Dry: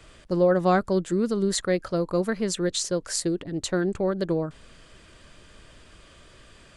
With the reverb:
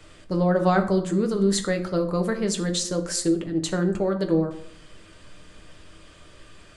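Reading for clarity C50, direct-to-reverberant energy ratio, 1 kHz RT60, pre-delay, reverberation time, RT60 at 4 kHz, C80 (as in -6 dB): 11.5 dB, 4.0 dB, 0.65 s, 7 ms, 0.70 s, 0.40 s, 14.5 dB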